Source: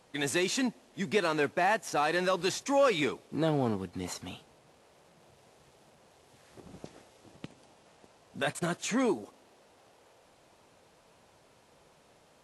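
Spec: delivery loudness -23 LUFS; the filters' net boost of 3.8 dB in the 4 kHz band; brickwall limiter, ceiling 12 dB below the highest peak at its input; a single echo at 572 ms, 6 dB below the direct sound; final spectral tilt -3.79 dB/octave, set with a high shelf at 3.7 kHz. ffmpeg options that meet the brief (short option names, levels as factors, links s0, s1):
-af "highshelf=f=3700:g=-6,equalizer=f=4000:t=o:g=8,alimiter=level_in=1.26:limit=0.0631:level=0:latency=1,volume=0.794,aecho=1:1:572:0.501,volume=4.47"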